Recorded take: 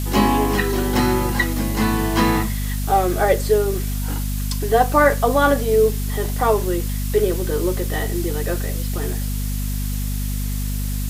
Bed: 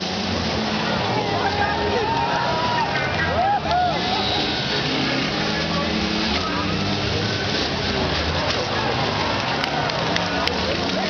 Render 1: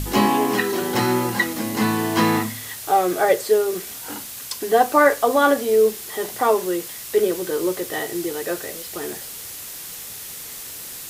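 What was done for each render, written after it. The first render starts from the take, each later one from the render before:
hum removal 50 Hz, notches 5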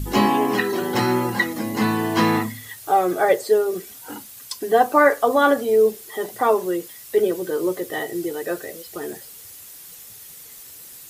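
broadband denoise 10 dB, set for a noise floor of −35 dBFS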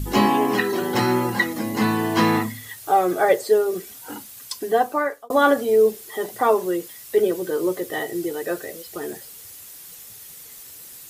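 0:04.57–0:05.30: fade out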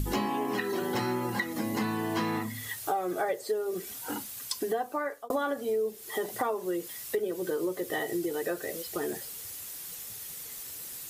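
downward compressor 6 to 1, threshold −28 dBFS, peak gain reduction 15.5 dB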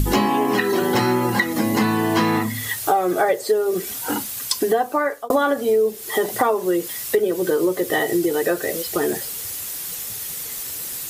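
level +11.5 dB

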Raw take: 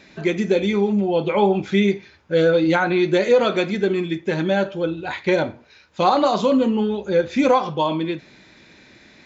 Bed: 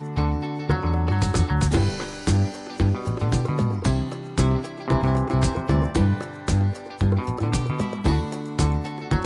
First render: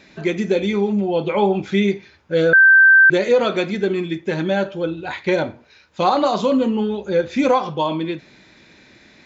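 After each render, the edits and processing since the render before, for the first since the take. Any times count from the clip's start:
0:02.53–0:03.10: beep over 1,560 Hz −6.5 dBFS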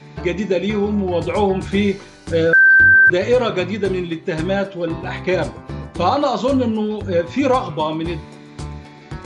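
mix in bed −9 dB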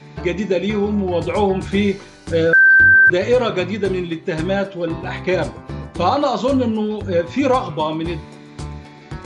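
no processing that can be heard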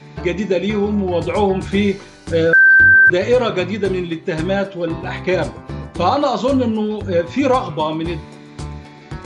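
level +1 dB

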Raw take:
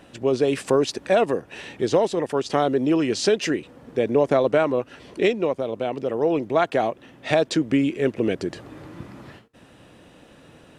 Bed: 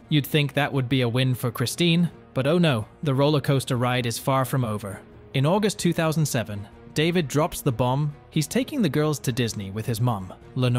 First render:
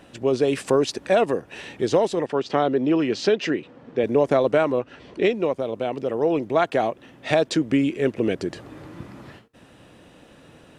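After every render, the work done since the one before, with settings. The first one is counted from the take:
0:02.26–0:04.04: band-pass filter 110–4,200 Hz
0:04.79–0:05.33: high-frequency loss of the air 88 metres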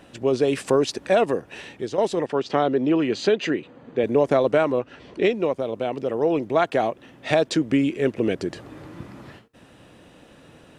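0:01.54–0:01.98: fade out, to −11 dB
0:02.89–0:04.16: Butterworth band-reject 5,400 Hz, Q 6.9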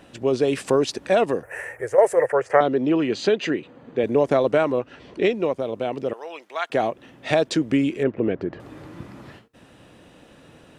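0:01.43–0:02.61: drawn EQ curve 130 Hz 0 dB, 200 Hz −21 dB, 320 Hz −10 dB, 510 Hz +10 dB, 770 Hz +4 dB, 1,100 Hz +3 dB, 1,900 Hz +12 dB, 3,700 Hz −24 dB, 6,900 Hz +1 dB, 10,000 Hz +13 dB
0:06.13–0:06.70: high-pass filter 1,200 Hz
0:08.03–0:08.60: low-pass filter 1,800 Hz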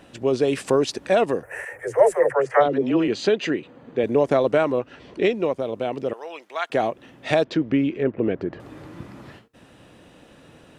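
0:01.65–0:03.08: all-pass dispersion lows, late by 77 ms, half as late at 390 Hz
0:07.44–0:08.19: high-frequency loss of the air 210 metres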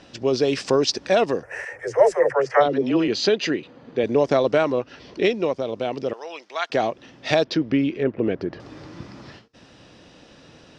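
low-pass with resonance 5,300 Hz, resonance Q 3.7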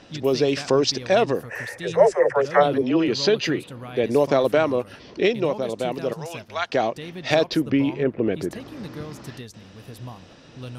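mix in bed −14.5 dB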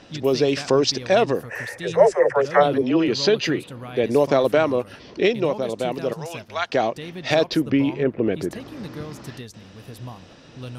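level +1 dB
brickwall limiter −3 dBFS, peak gain reduction 2 dB

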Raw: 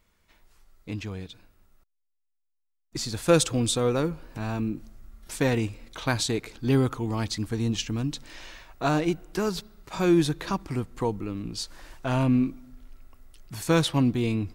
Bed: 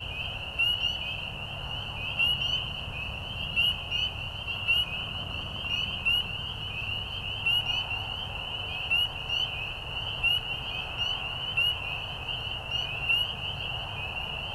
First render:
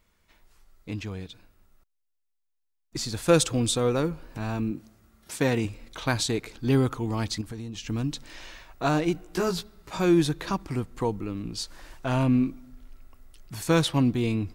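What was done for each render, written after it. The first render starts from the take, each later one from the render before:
0:04.71–0:05.65: high-pass filter 96 Hz
0:07.41–0:07.85: downward compressor 10 to 1, threshold −33 dBFS
0:09.13–0:09.97: double-tracking delay 17 ms −3.5 dB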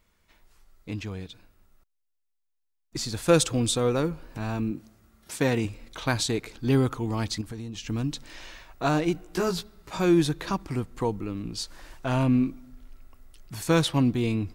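no processing that can be heard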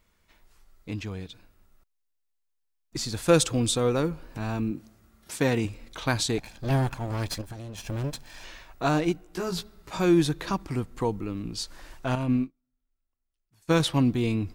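0:06.38–0:08.44: lower of the sound and its delayed copy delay 1.2 ms
0:09.12–0:09.52: clip gain −5 dB
0:12.15–0:13.80: expander for the loud parts 2.5 to 1, over −41 dBFS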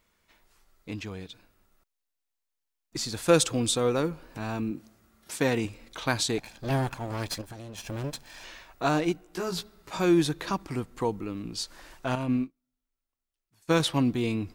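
low-shelf EQ 130 Hz −8.5 dB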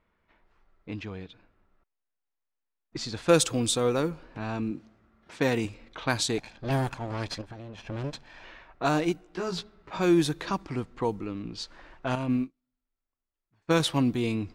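low-pass that shuts in the quiet parts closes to 1,900 Hz, open at −22.5 dBFS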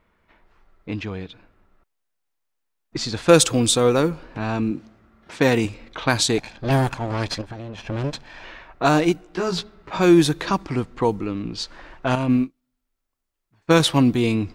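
level +8 dB
brickwall limiter −3 dBFS, peak gain reduction 1.5 dB

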